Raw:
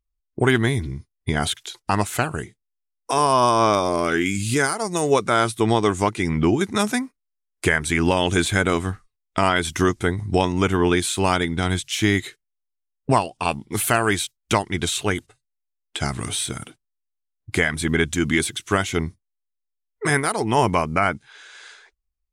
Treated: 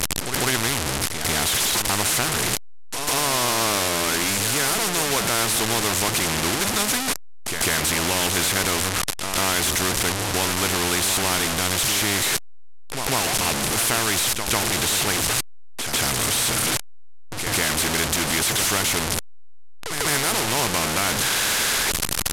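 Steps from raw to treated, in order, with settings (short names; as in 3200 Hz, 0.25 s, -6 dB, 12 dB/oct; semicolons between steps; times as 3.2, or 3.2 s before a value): delta modulation 64 kbps, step -15 dBFS; reverse echo 0.146 s -12 dB; spectral compressor 2:1; gain -3 dB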